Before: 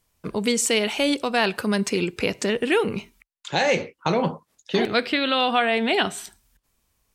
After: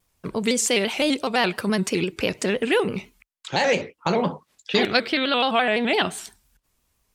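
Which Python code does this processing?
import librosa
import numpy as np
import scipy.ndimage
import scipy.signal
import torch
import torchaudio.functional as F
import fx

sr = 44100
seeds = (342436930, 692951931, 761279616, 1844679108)

y = fx.peak_eq(x, sr, hz=3000.0, db=6.5, octaves=2.2, at=(4.31, 4.97))
y = fx.vibrato_shape(y, sr, shape='square', rate_hz=5.9, depth_cents=100.0)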